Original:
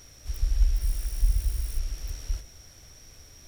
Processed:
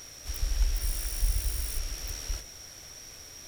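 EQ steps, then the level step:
low-shelf EQ 150 Hz −9.5 dB
low-shelf EQ 480 Hz −2.5 dB
+6.5 dB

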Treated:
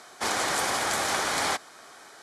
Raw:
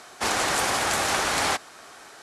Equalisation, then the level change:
low-shelf EQ 68 Hz −11.5 dB
notch filter 2,700 Hz, Q 10
−2.5 dB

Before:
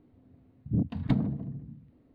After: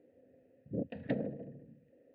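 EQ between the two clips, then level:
formant filter e
high-shelf EQ 2,700 Hz −8 dB
+13.0 dB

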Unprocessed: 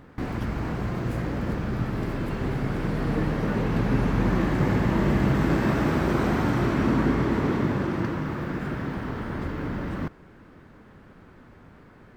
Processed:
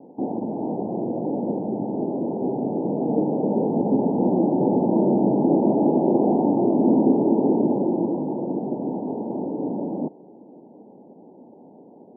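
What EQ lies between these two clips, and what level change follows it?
high-pass filter 220 Hz 24 dB per octave
Butterworth low-pass 890 Hz 96 dB per octave
+7.5 dB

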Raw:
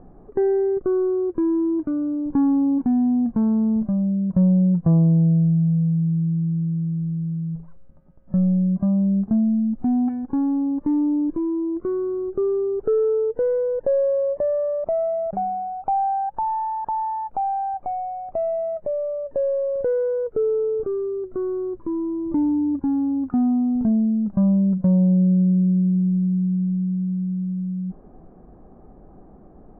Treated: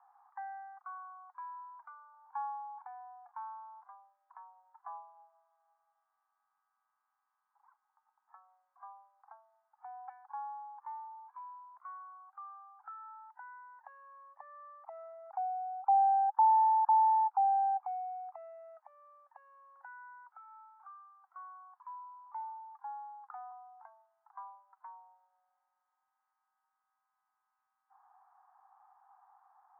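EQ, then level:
Butterworth high-pass 800 Hz 96 dB per octave
low-pass filter 1,300 Hz 12 dB per octave
high-frequency loss of the air 370 metres
+2.0 dB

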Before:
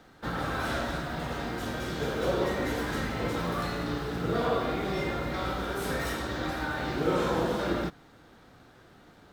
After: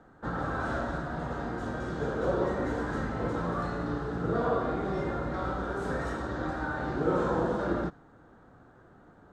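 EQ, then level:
dynamic equaliser 4,700 Hz, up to +6 dB, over −54 dBFS, Q 1.2
high-frequency loss of the air 120 metres
flat-topped bell 3,400 Hz −13.5 dB
0.0 dB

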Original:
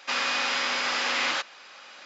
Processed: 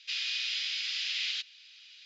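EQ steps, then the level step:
inverse Chebyshev high-pass filter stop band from 740 Hz, stop band 70 dB
high-frequency loss of the air 140 metres
high-shelf EQ 5,200 Hz −11.5 dB
+8.0 dB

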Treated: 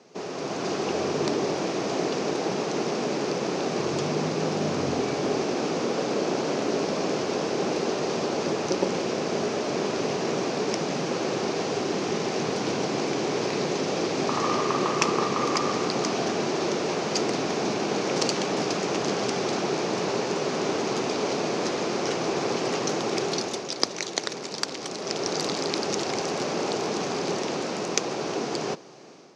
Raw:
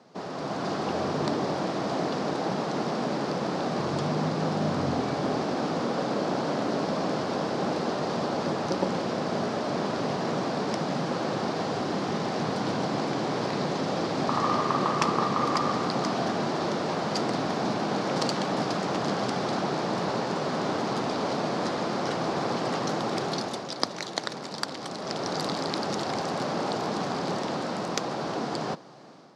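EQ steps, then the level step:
graphic EQ with 15 bands 400 Hz +9 dB, 2,500 Hz +9 dB, 6,300 Hz +12 dB
−2.5 dB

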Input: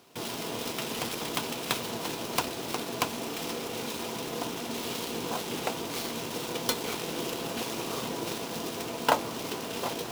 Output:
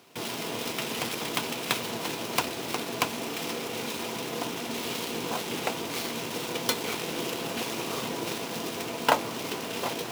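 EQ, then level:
high-pass filter 73 Hz
parametric band 2,200 Hz +3.5 dB 0.87 octaves
+1.0 dB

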